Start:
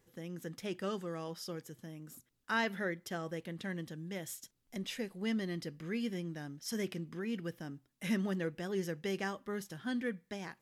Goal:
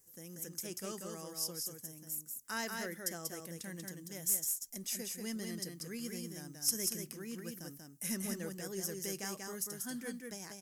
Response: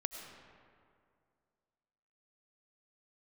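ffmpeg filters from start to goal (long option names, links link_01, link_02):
-af "aexciter=amount=6.9:drive=7.7:freq=5200,aeval=exprs='0.299*(cos(1*acos(clip(val(0)/0.299,-1,1)))-cos(1*PI/2))+0.0237*(cos(4*acos(clip(val(0)/0.299,-1,1)))-cos(4*PI/2))+0.0211*(cos(6*acos(clip(val(0)/0.299,-1,1)))-cos(6*PI/2))+0.00422*(cos(8*acos(clip(val(0)/0.299,-1,1)))-cos(8*PI/2))':channel_layout=same,aecho=1:1:188:0.631,volume=-7dB"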